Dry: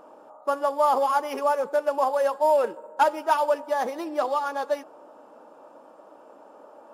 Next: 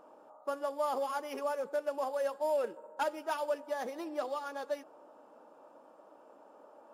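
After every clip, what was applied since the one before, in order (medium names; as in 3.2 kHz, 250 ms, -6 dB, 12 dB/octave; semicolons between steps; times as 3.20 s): dynamic bell 950 Hz, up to -7 dB, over -35 dBFS, Q 1.6; trim -8 dB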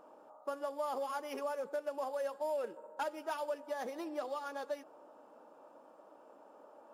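compression 2:1, threshold -35 dBFS, peak gain reduction 4.5 dB; trim -1 dB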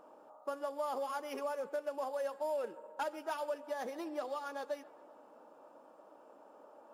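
feedback echo behind a band-pass 132 ms, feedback 58%, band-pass 1.6 kHz, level -20 dB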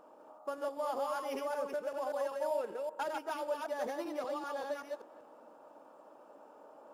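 chunks repeated in reverse 193 ms, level -2.5 dB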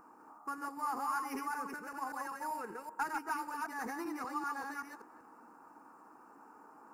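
static phaser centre 1.4 kHz, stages 4; trim +5.5 dB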